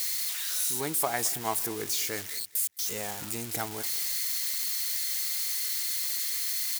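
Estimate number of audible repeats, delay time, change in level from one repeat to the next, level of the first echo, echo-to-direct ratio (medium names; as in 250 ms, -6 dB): 2, 217 ms, -13.0 dB, -20.0 dB, -20.0 dB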